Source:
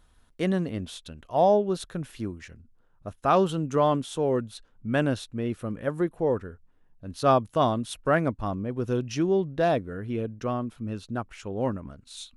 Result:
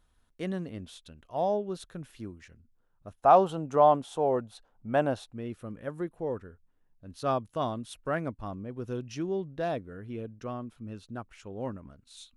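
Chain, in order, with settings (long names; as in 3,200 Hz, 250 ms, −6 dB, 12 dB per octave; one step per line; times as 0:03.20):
0:03.19–0:05.33: parametric band 750 Hz +14.5 dB 1.1 octaves
level −8 dB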